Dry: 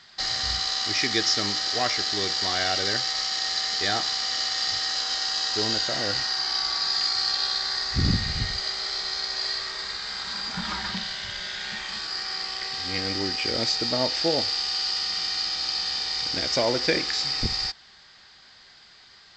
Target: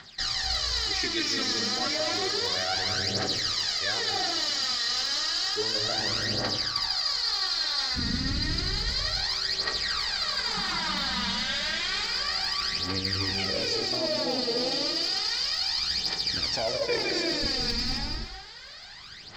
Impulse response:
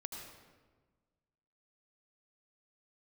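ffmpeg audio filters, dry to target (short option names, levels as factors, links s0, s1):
-filter_complex "[1:a]atrim=start_sample=2205,afade=t=out:st=0.45:d=0.01,atrim=end_sample=20286,asetrate=22050,aresample=44100[s0];[0:a][s0]afir=irnorm=-1:irlink=0,aphaser=in_gain=1:out_gain=1:delay=4.3:decay=0.65:speed=0.31:type=triangular,areverse,acompressor=threshold=0.0398:ratio=6,areverse,volume=1.33"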